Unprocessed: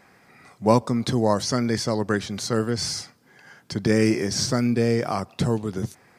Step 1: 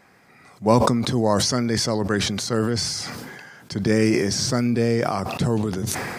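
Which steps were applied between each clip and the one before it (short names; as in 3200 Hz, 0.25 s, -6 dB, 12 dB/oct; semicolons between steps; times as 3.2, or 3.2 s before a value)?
sustainer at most 28 dB/s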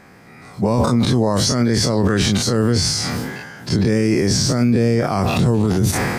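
spectral dilation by 60 ms; low shelf 350 Hz +8 dB; maximiser +10 dB; gain -7 dB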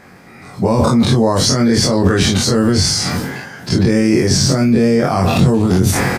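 doubler 22 ms -4 dB; gain +2.5 dB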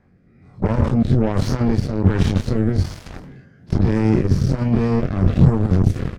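added harmonics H 7 -14 dB, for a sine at -1 dBFS; rotary speaker horn 1.2 Hz; RIAA curve playback; gain -9.5 dB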